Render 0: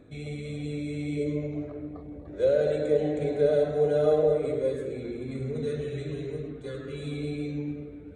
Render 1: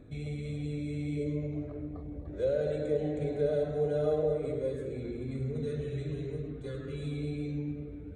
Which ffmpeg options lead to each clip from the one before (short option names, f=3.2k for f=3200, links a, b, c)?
-filter_complex "[0:a]lowshelf=f=150:g=11,asplit=2[a][b];[b]acompressor=threshold=-33dB:ratio=6,volume=-1dB[c];[a][c]amix=inputs=2:normalize=0,volume=-9dB"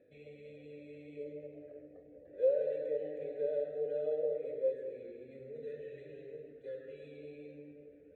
-filter_complex "[0:a]asplit=3[a][b][c];[a]bandpass=f=530:t=q:w=8,volume=0dB[d];[b]bandpass=f=1.84k:t=q:w=8,volume=-6dB[e];[c]bandpass=f=2.48k:t=q:w=8,volume=-9dB[f];[d][e][f]amix=inputs=3:normalize=0,volume=2.5dB"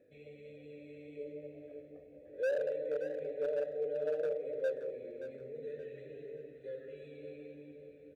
-af "volume=29dB,asoftclip=hard,volume=-29dB,aecho=1:1:575|1150|1725|2300:0.282|0.0958|0.0326|0.0111"